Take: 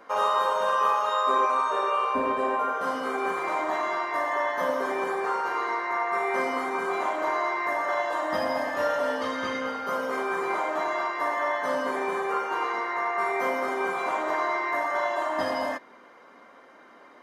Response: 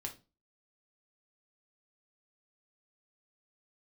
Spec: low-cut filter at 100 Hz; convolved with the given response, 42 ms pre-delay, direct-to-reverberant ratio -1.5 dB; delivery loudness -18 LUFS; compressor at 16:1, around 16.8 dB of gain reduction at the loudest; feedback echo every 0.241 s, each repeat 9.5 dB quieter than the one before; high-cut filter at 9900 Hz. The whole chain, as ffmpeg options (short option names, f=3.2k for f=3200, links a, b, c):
-filter_complex "[0:a]highpass=100,lowpass=9.9k,acompressor=threshold=-36dB:ratio=16,aecho=1:1:241|482|723|964:0.335|0.111|0.0365|0.012,asplit=2[a][b];[1:a]atrim=start_sample=2205,adelay=42[c];[b][c]afir=irnorm=-1:irlink=0,volume=3.5dB[d];[a][d]amix=inputs=2:normalize=0,volume=16.5dB"